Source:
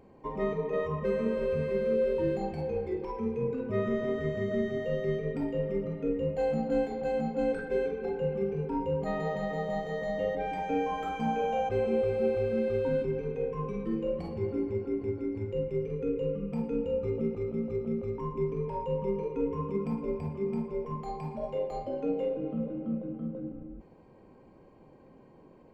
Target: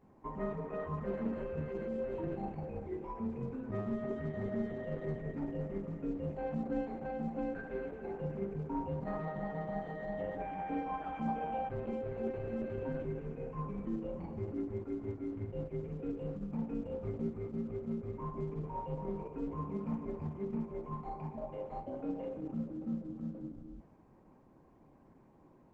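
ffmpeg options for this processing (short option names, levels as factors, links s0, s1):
-af "lowpass=1800,equalizer=f=470:w=2.8:g=-9.5,volume=0.668" -ar 48000 -c:a libopus -b:a 10k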